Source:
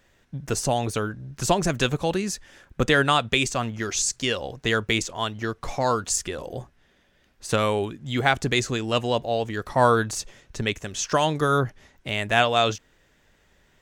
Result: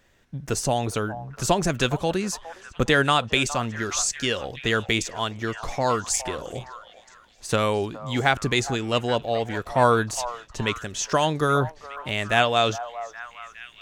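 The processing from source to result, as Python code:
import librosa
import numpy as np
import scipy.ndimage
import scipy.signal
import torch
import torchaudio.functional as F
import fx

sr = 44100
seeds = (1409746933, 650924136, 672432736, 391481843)

y = fx.echo_stepped(x, sr, ms=413, hz=840.0, octaves=0.7, feedback_pct=70, wet_db=-10.5)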